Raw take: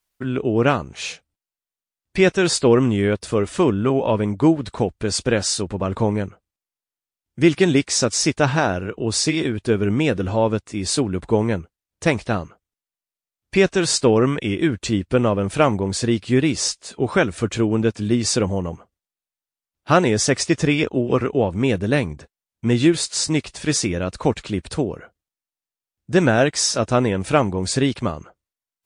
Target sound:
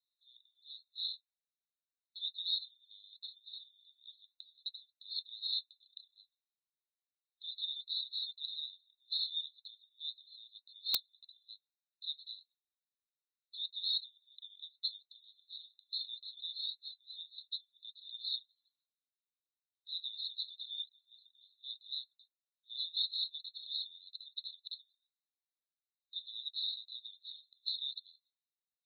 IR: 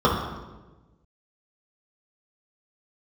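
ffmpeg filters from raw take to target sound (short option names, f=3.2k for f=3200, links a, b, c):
-filter_complex "[0:a]asplit=3[a][b][c];[a]afade=t=out:st=5.82:d=0.02[d];[b]tremolo=f=30:d=0.667,afade=t=in:st=5.82:d=0.02,afade=t=out:st=6.23:d=0.02[e];[c]afade=t=in:st=6.23:d=0.02[f];[d][e][f]amix=inputs=3:normalize=0,asuperpass=centerf=3900:order=12:qfactor=5.6,aeval=exprs='(mod(12.6*val(0)+1,2)-1)/12.6':c=same"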